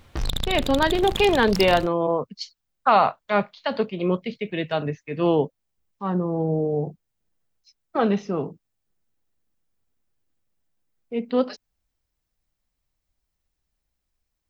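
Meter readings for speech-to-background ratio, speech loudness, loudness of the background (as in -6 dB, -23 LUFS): 6.5 dB, -23.5 LUFS, -30.0 LUFS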